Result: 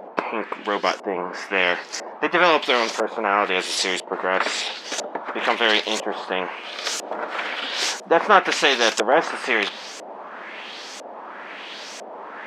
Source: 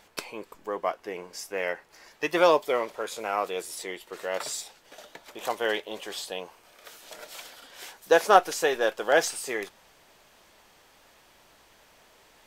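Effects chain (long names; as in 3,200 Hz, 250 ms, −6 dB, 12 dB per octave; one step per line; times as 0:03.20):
auto-filter low-pass saw up 1 Hz 590–7,300 Hz
linear-phase brick-wall high-pass 180 Hz
every bin compressed towards the loudest bin 2 to 1
level −1.5 dB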